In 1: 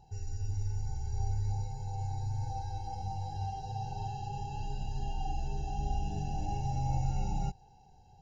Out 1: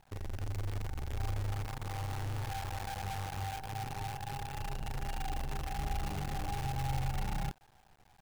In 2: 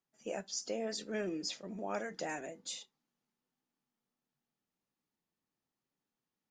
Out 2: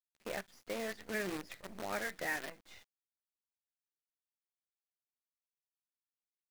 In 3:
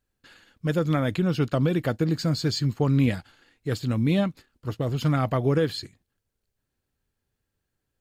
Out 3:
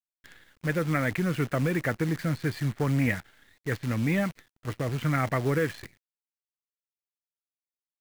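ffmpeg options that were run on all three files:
-af "asoftclip=type=tanh:threshold=-14dB,lowpass=f=2k:t=q:w=4.2,acrusher=bits=7:dc=4:mix=0:aa=0.000001,volume=-3dB"

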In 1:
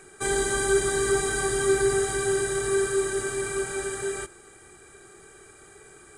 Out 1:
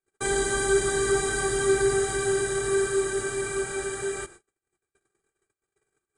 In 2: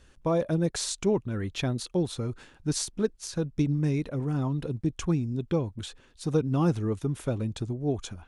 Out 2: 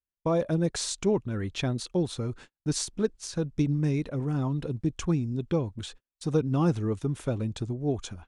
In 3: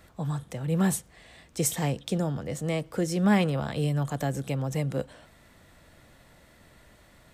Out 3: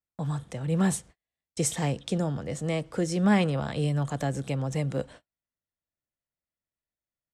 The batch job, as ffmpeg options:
-af "agate=range=-43dB:threshold=-45dB:ratio=16:detection=peak,lowpass=f=10k:w=0.5412,lowpass=f=10k:w=1.3066"

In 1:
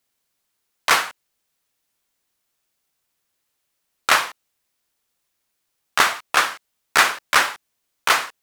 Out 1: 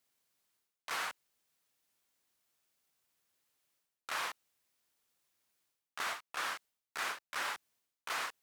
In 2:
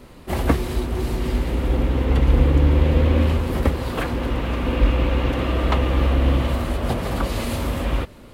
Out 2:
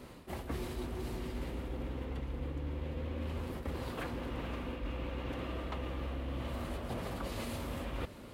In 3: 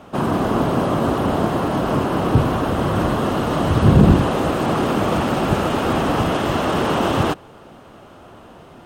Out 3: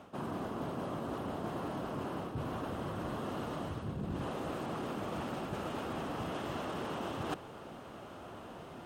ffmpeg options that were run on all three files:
-af "highpass=f=64:p=1,areverse,acompressor=threshold=-30dB:ratio=16,areverse,volume=-5dB"

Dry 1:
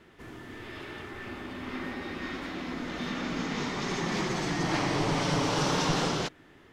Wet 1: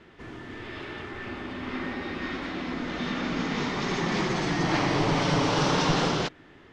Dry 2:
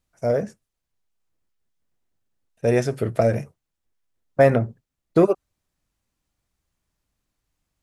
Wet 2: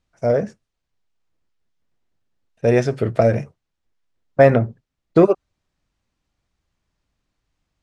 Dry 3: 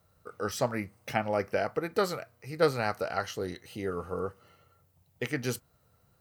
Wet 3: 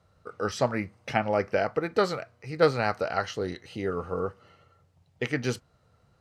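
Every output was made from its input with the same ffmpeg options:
-af "lowpass=5.6k,volume=3.5dB"

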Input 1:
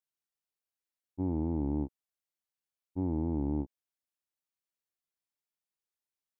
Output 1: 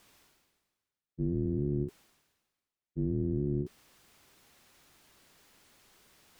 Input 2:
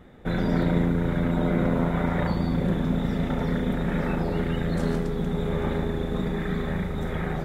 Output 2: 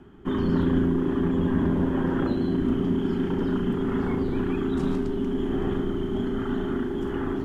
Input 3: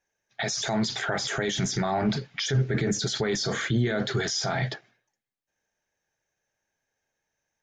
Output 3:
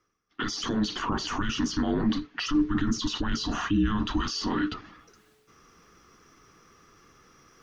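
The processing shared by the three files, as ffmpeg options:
-af "aeval=exprs='0.316*(cos(1*acos(clip(val(0)/0.316,-1,1)))-cos(1*PI/2))+0.00794*(cos(4*acos(clip(val(0)/0.316,-1,1)))-cos(4*PI/2))+0.00224*(cos(5*acos(clip(val(0)/0.316,-1,1)))-cos(5*PI/2))':c=same,highshelf=f=6.4k:g=-10,areverse,acompressor=mode=upward:threshold=-36dB:ratio=2.5,areverse,afreqshift=-430"

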